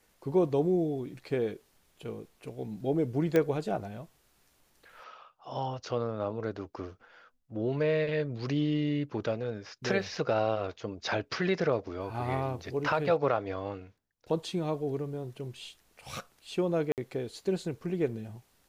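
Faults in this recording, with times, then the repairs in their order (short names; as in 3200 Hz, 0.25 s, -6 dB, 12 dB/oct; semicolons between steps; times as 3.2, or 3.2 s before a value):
3.36 pop -14 dBFS
16.92–16.98 gap 58 ms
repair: de-click; interpolate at 16.92, 58 ms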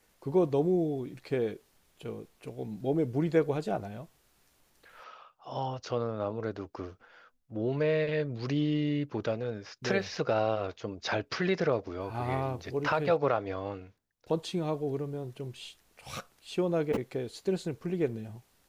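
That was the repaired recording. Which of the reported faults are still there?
none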